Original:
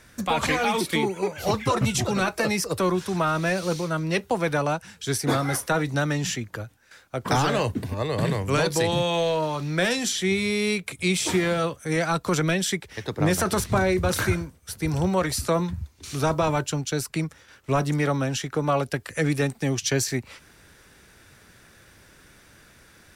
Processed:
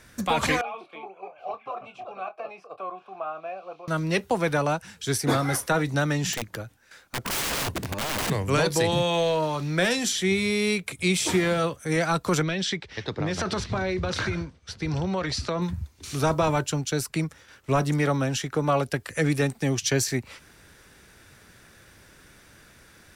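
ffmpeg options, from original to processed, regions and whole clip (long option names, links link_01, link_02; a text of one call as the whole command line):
ffmpeg -i in.wav -filter_complex "[0:a]asettb=1/sr,asplit=3[link_01][link_02][link_03];[link_01]atrim=end=0.614[link_04];[link_02]atrim=start=0.61:end=3.88,asetpts=PTS-STARTPTS,afade=type=in:duration=0.004:curve=qsin,afade=type=out:start_time=3.266:duration=0.004:curve=qsin,asplit=3[link_05][link_06][link_07];[link_05]bandpass=frequency=730:width_type=q:width=8,volume=0dB[link_08];[link_06]bandpass=frequency=1090:width_type=q:width=8,volume=-6dB[link_09];[link_07]bandpass=frequency=2440:width_type=q:width=8,volume=-9dB[link_10];[link_08][link_09][link_10]amix=inputs=3:normalize=0,bass=frequency=250:gain=-6,treble=frequency=4000:gain=-13,asplit=2[link_11][link_12];[link_12]adelay=26,volume=-10.5dB[link_13];[link_11][link_13]amix=inputs=2:normalize=0,atrim=end_sample=144207[link_14];[link_03]atrim=start=3.876[link_15];[link_04][link_14]acrossfade=duration=0.004:curve1=hsin:curve2=qsin[link_16];[link_16][link_15]acrossfade=duration=0.004:curve1=qsin:curve2=hsin,asettb=1/sr,asplit=3[link_17][link_18][link_19];[link_17]atrim=end=6.334[link_20];[link_18]atrim=start=6.33:end=8.3,asetpts=PTS-STARTPTS,afade=type=in:duration=0.004:curve=qsin,afade=type=out:start_time=1.966:duration=0.004:curve=qsin,equalizer=frequency=100:width_type=o:width=0.21:gain=-5.5,aeval=exprs='(mod(14.1*val(0)+1,2)-1)/14.1':channel_layout=same[link_21];[link_19]atrim=start=8.296[link_22];[link_20][link_21]acrossfade=duration=0.004:curve1=hsin:curve2=qsin[link_23];[link_23][link_22]acrossfade=duration=0.004:curve1=qsin:curve2=hsin,asettb=1/sr,asplit=3[link_24][link_25][link_26];[link_24]atrim=end=12.424[link_27];[link_25]atrim=start=12.42:end=15.62,asetpts=PTS-STARTPTS,afade=type=in:duration=0.004:curve=qsin,afade=type=out:start_time=3.196:duration=0.004:curve=qsin,lowpass=frequency=4700:width=0.5412,lowpass=frequency=4700:width=1.3066,aemphasis=mode=production:type=50fm,acompressor=threshold=-23dB:ratio=6:attack=3.2:release=140:knee=1:detection=peak[link_28];[link_26]atrim=start=15.616[link_29];[link_27][link_28]acrossfade=duration=0.004:curve1=hsin:curve2=qsin[link_30];[link_30][link_29]acrossfade=duration=0.004:curve1=qsin:curve2=hsin" out.wav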